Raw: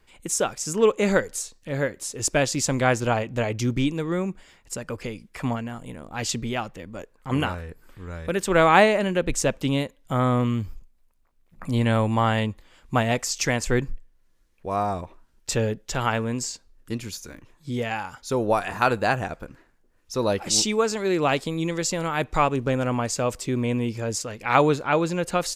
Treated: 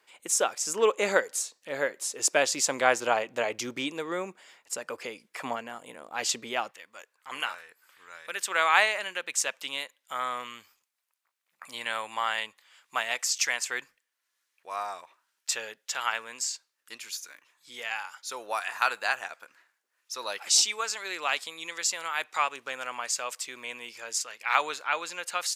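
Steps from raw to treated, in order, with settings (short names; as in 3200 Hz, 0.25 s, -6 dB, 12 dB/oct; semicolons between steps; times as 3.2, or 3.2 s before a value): HPF 530 Hz 12 dB/oct, from 6.71 s 1300 Hz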